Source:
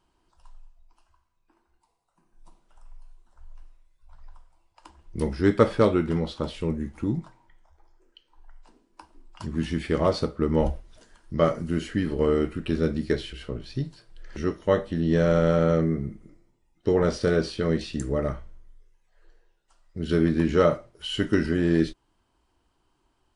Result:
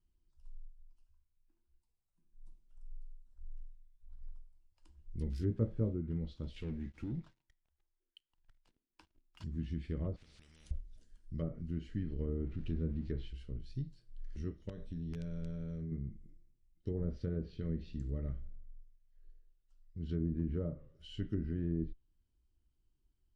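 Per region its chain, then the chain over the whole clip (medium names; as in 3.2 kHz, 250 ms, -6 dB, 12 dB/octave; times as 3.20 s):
5.30–5.95 s: zero-crossing glitches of -21 dBFS + doubling 18 ms -6.5 dB
6.56–9.44 s: low-pass 2.5 kHz + tilt EQ +3.5 dB/octave + waveshaping leveller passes 3
10.16–10.71 s: compression 10:1, threshold -36 dBFS + spectrum-flattening compressor 10:1
12.29–13.28 s: jump at every zero crossing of -34.5 dBFS + distance through air 74 m
14.69–15.92 s: rippled EQ curve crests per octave 1.6, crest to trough 8 dB + compression 4:1, threshold -26 dBFS + integer overflow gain 19.5 dB
17.23–21.29 s: distance through air 58 m + modulated delay 89 ms, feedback 48%, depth 163 cents, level -22 dB
whole clip: low-pass that closes with the level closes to 790 Hz, closed at -16.5 dBFS; amplifier tone stack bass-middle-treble 10-0-1; trim +3.5 dB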